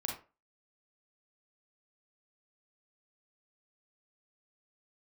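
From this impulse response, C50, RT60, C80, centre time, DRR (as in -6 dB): 4.5 dB, 0.35 s, 11.5 dB, 31 ms, -0.5 dB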